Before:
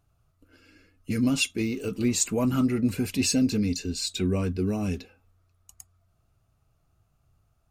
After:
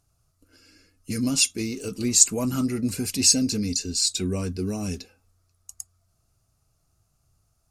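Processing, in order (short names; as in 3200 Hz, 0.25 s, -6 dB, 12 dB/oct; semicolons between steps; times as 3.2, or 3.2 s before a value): band shelf 7300 Hz +11.5 dB; gain -1.5 dB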